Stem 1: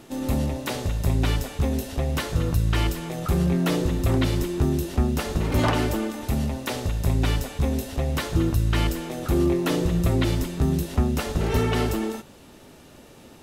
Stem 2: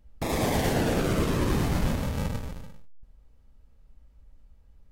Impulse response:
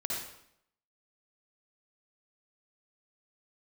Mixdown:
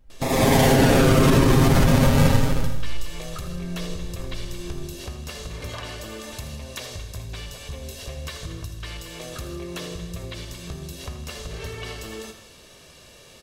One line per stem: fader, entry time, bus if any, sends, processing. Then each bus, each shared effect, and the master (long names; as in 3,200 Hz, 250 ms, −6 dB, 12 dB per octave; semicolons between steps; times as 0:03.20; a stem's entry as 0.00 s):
−7.0 dB, 0.10 s, send −10 dB, echo send −10 dB, parametric band 4,800 Hz +10.5 dB 2.7 octaves; comb filter 1.8 ms, depth 51%; downward compressor, threshold −27 dBFS, peak gain reduction 13 dB
+1.5 dB, 0.00 s, no send, echo send −10.5 dB, comb filter 7.5 ms, depth 69%; automatic gain control gain up to 14 dB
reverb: on, RT60 0.70 s, pre-delay 51 ms
echo: repeating echo 80 ms, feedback 57%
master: brickwall limiter −7.5 dBFS, peak gain reduction 8 dB